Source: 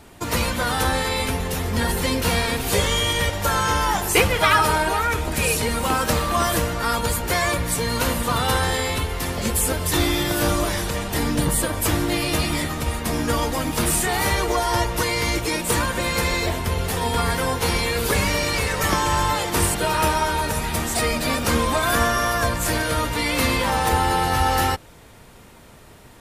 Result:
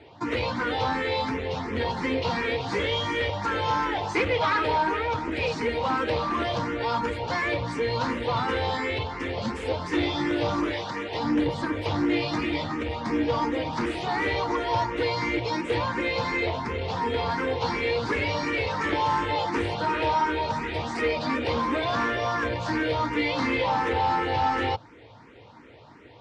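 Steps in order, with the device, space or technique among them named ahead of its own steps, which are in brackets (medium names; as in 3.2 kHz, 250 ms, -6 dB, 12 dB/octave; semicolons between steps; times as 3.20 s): 10.73–11.24 s: bass shelf 200 Hz -10.5 dB; barber-pole phaser into a guitar amplifier (barber-pole phaser +2.8 Hz; saturation -20 dBFS, distortion -14 dB; cabinet simulation 95–4600 Hz, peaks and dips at 110 Hz +6 dB, 170 Hz -4 dB, 300 Hz +8 dB, 480 Hz +6 dB, 900 Hz +6 dB, 2.1 kHz +4 dB); trim -2 dB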